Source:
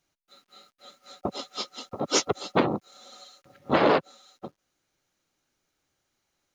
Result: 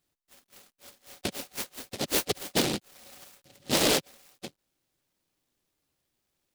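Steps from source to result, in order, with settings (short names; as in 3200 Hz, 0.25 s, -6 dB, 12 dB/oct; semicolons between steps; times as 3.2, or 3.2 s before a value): soft clip -14.5 dBFS, distortion -17 dB; noise-modulated delay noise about 3500 Hz, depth 0.24 ms; gain -1.5 dB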